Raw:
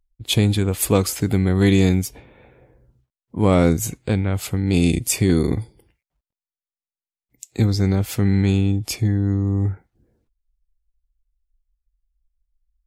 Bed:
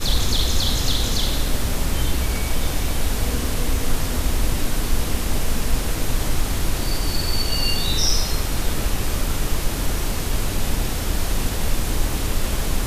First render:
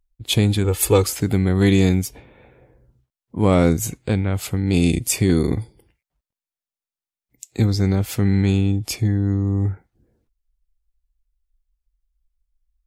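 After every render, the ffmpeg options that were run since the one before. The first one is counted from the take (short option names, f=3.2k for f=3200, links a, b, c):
-filter_complex "[0:a]asettb=1/sr,asplit=3[a][b][c];[a]atrim=end=0.644[d];[b]atrim=start=0.64:end=1.04,asetpts=PTS-STARTPTS,afade=t=in:d=0.004:c=qsin,afade=t=out:st=0.396:d=0.004:c=qsin,aecho=1:1:2.3:0.68,atrim=end_sample=17640[e];[c]atrim=start=1.036[f];[d][e]acrossfade=d=0.004:c1=hsin:c2=qsin[g];[g][f]acrossfade=d=0.004:c1=qsin:c2=hsin"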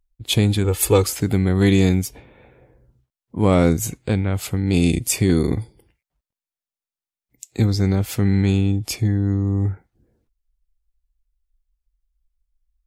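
-af anull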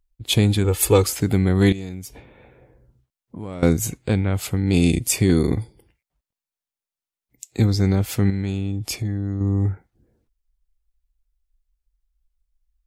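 -filter_complex "[0:a]asettb=1/sr,asplit=3[a][b][c];[a]atrim=end=1.724[d];[b]atrim=start=1.72:end=3.63,asetpts=PTS-STARTPTS,afade=t=in:d=0.004:c=qsin,afade=t=out:st=1.906:d=0.004:c=qsin,acompressor=threshold=-32dB:ratio=4:attack=3.2:release=140:knee=1:detection=peak[e];[c]atrim=start=3.626[f];[d][e]acrossfade=d=0.004:c1=hsin:c2=qsin[g];[g][f]acrossfade=d=0.004:c1=qsin:c2=hsin,asettb=1/sr,asplit=3[h][i][j];[h]atrim=end=8.304[k];[i]atrim=start=8.3:end=9.41,asetpts=PTS-STARTPTS,afade=t=in:d=0.004:c=qsin,afade=t=out:st=1.106:d=0.004:c=qsin,acompressor=threshold=-21dB:ratio=6:attack=3.2:release=140:knee=1:detection=peak[l];[j]atrim=start=9.406[m];[k][l]acrossfade=d=0.004:c1=hsin:c2=qsin[n];[n][m]acrossfade=d=0.004:c1=qsin:c2=hsin"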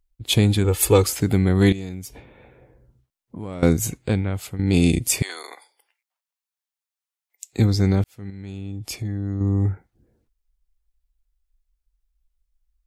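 -filter_complex "[0:a]asettb=1/sr,asplit=3[a][b][c];[a]atrim=end=5.224[d];[b]atrim=start=5.22:end=7.53,asetpts=PTS-STARTPTS,afade=t=in:d=0.004:c=qsin,afade=t=out:st=2.306:d=0.004:c=qsin,highpass=f=740:w=0.5412,highpass=f=740:w=1.3066[e];[c]atrim=start=7.526[f];[d][e]acrossfade=d=0.004:c1=hsin:c2=qsin[g];[g][f]acrossfade=d=0.004:c1=qsin:c2=hsin,asplit=3[h][i][j];[h]atrim=end=4.59,asetpts=PTS-STARTPTS,afade=t=out:st=4.03:d=0.56:silence=0.298538[k];[i]atrim=start=4.59:end=8.04,asetpts=PTS-STARTPTS,afade=t=in:d=0.004:c=hsin:silence=0.298538,afade=t=out:st=3.446:d=0.004:c=hsin[l];[j]atrim=start=8.04,asetpts=PTS-STARTPTS,afade=t=in:d=1.39[m];[k][l][m]concat=n=3:v=0:a=1"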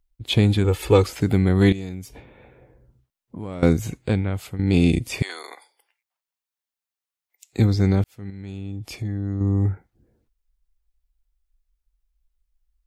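-filter_complex "[0:a]acrossover=split=4400[a][b];[b]acompressor=threshold=-38dB:ratio=4:attack=1:release=60[c];[a][c]amix=inputs=2:normalize=0,equalizer=f=8.9k:t=o:w=1.8:g=-2"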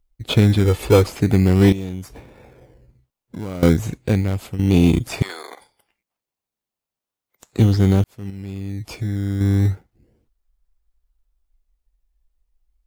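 -filter_complex "[0:a]asplit=2[a][b];[b]acrusher=samples=19:mix=1:aa=0.000001:lfo=1:lforange=11.4:lforate=0.35,volume=-5dB[c];[a][c]amix=inputs=2:normalize=0,asoftclip=type=tanh:threshold=-0.5dB"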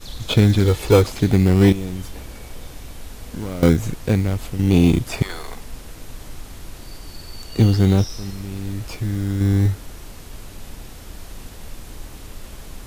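-filter_complex "[1:a]volume=-14.5dB[a];[0:a][a]amix=inputs=2:normalize=0"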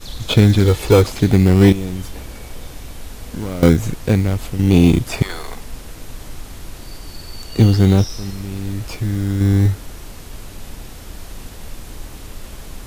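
-af "volume=3dB,alimiter=limit=-1dB:level=0:latency=1"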